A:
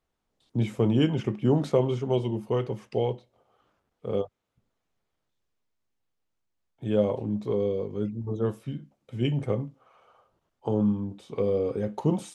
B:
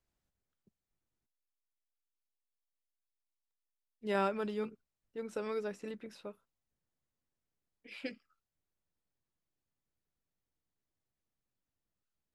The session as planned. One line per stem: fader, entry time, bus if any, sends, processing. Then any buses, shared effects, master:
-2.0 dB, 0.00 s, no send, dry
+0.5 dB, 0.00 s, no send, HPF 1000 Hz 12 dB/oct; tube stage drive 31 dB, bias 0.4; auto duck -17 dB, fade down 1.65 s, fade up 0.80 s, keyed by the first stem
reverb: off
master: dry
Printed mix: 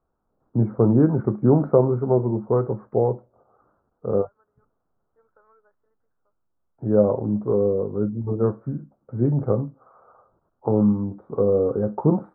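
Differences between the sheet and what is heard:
stem A -2.0 dB -> +6.5 dB; master: extra elliptic low-pass 1400 Hz, stop band 50 dB

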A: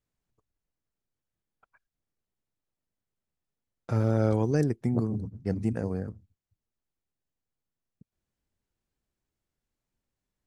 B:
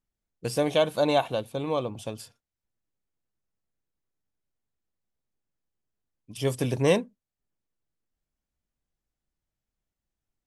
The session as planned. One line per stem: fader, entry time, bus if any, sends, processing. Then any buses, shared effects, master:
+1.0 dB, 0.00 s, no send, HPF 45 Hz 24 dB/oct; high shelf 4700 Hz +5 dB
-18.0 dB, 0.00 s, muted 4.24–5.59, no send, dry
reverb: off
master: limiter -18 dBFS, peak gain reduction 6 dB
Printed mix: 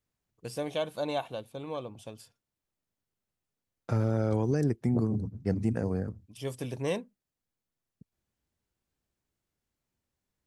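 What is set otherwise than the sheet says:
stem A: missing high shelf 4700 Hz +5 dB; stem B -18.0 dB -> -9.0 dB

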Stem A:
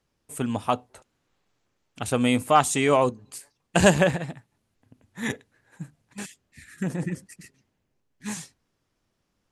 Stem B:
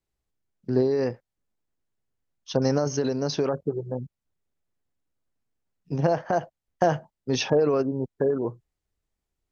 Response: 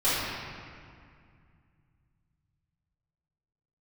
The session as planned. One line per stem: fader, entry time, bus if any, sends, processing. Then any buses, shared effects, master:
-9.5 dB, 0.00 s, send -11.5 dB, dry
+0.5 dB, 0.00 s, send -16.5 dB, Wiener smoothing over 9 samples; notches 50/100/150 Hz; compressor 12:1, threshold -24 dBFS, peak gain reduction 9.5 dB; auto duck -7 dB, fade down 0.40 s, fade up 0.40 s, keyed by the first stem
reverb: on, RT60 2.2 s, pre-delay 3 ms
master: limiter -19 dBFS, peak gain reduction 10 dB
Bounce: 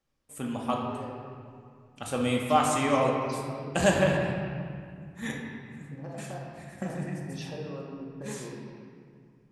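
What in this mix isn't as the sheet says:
stem B +0.5 dB -> -10.0 dB; master: missing limiter -19 dBFS, peak gain reduction 10 dB

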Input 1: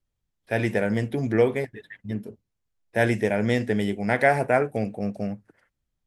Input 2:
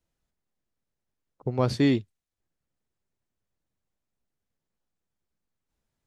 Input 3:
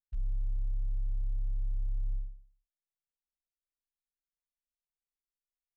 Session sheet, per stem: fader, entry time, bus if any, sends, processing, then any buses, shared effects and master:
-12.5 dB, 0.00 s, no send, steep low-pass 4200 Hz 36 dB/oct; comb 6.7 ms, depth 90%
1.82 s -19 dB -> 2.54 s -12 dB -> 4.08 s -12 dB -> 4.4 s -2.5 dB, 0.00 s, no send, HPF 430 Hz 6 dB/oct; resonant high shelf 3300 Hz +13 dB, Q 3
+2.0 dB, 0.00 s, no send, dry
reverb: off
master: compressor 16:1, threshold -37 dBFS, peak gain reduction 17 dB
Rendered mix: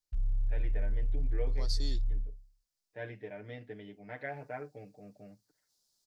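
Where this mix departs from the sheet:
stem 1 -12.5 dB -> -23.5 dB; master: missing compressor 16:1, threshold -37 dBFS, peak gain reduction 17 dB

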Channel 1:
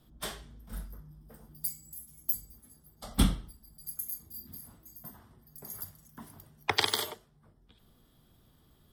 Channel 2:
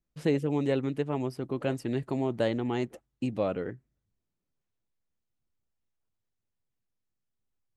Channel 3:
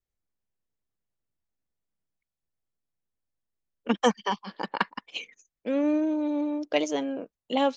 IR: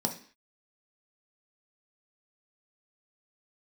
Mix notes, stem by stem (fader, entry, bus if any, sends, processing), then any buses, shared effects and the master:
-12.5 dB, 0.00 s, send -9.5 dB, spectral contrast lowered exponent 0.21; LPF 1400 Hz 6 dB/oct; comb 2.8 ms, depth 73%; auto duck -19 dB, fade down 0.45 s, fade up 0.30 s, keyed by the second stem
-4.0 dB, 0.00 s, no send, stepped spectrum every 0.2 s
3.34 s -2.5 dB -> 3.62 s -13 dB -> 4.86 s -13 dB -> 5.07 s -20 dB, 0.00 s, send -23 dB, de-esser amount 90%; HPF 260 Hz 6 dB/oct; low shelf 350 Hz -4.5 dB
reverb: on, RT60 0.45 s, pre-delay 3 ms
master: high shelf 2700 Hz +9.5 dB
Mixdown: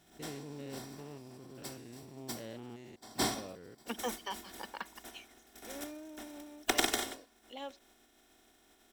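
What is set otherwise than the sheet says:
stem 1 -12.5 dB -> -3.0 dB; stem 2 -4.0 dB -> -16.0 dB

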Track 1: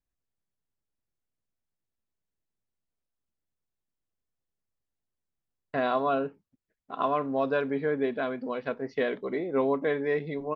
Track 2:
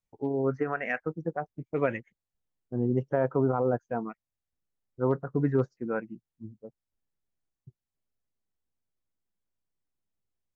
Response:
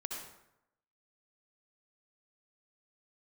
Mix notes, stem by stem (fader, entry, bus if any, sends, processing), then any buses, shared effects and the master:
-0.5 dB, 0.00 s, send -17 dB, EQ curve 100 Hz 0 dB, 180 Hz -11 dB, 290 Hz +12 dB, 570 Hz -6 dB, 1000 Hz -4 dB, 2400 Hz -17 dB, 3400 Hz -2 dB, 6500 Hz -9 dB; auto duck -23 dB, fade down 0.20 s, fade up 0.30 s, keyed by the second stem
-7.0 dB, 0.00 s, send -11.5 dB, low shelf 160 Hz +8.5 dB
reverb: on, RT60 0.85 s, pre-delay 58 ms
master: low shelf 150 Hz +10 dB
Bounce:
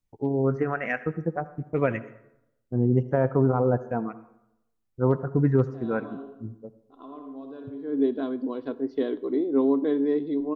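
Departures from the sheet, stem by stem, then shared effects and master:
stem 2 -7.0 dB -> +0.5 dB; master: missing low shelf 150 Hz +10 dB

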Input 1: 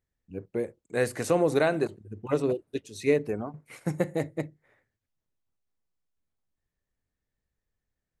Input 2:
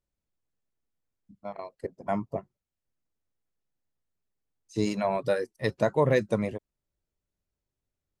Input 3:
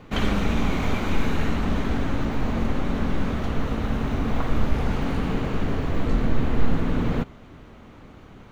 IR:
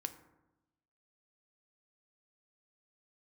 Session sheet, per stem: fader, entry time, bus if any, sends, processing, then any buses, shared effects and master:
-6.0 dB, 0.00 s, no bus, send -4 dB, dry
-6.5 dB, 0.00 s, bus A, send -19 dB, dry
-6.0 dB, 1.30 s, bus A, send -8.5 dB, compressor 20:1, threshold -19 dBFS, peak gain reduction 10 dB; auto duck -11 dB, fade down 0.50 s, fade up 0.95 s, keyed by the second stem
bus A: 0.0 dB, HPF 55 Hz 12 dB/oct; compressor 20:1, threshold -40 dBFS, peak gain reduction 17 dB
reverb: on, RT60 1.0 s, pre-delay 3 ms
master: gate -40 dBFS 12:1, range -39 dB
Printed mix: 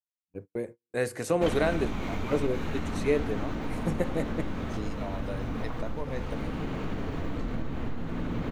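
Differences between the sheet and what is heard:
stem 2 -6.5 dB -> +1.5 dB; stem 3 -6.0 dB -> +2.0 dB

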